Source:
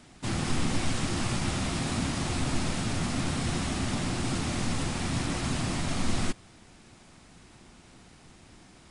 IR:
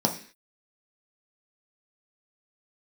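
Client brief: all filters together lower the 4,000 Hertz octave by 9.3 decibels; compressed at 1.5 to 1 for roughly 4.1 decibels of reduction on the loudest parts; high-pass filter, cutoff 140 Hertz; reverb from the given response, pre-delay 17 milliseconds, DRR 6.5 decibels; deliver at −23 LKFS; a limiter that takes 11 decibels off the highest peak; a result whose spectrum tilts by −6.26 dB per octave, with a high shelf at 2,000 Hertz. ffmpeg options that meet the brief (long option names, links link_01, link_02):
-filter_complex "[0:a]highpass=140,highshelf=frequency=2000:gain=-7.5,equalizer=frequency=4000:width_type=o:gain=-4.5,acompressor=threshold=-40dB:ratio=1.5,alimiter=level_in=11.5dB:limit=-24dB:level=0:latency=1,volume=-11.5dB,asplit=2[link_01][link_02];[1:a]atrim=start_sample=2205,adelay=17[link_03];[link_02][link_03]afir=irnorm=-1:irlink=0,volume=-18dB[link_04];[link_01][link_04]amix=inputs=2:normalize=0,volume=17.5dB"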